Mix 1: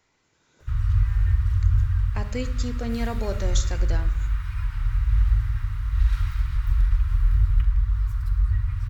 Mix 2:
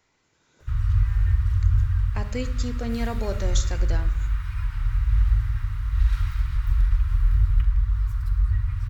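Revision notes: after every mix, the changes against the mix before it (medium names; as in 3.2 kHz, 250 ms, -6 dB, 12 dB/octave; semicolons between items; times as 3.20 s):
no change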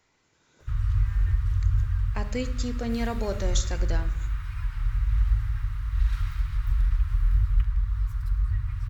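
background: send -10.0 dB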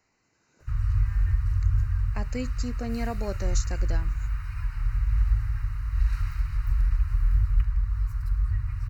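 speech: send off; master: add Butterworth band-stop 3.4 kHz, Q 3.5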